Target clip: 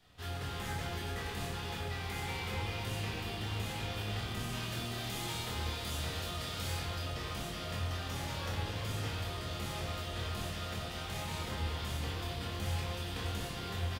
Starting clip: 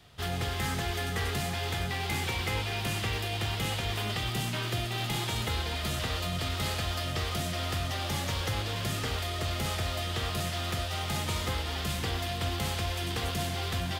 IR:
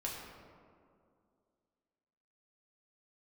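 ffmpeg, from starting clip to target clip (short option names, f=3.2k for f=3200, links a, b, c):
-filter_complex "[0:a]asettb=1/sr,asplit=3[a][b][c];[a]atrim=end=4.494[d];[b]atrim=start=4.49:end=6.79,asetpts=PTS-STARTPTS,afade=t=in:d=0.004:c=qsin,afade=t=out:st=2.296:d=0.004:c=qsin,bass=f=250:g=-2,treble=f=4k:g=5[e];[c]atrim=start=6.786[f];[d][e]acrossfade=d=0.004:c1=hsin:c2=qsin[g];[g][f]acrossfade=d=0.004:c1=qsin:c2=hsin,asoftclip=type=tanh:threshold=-25dB,asplit=2[h][i];[i]adelay=25,volume=-5.5dB[j];[h][j]amix=inputs=2:normalize=0[k];[1:a]atrim=start_sample=2205[l];[k][l]afir=irnorm=-1:irlink=0,volume=-7dB"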